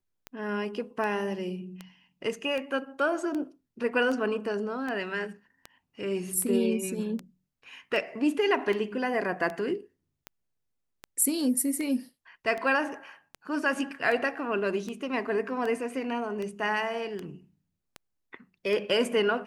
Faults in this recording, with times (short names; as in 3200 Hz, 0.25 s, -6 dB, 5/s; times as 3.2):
tick 78 rpm -22 dBFS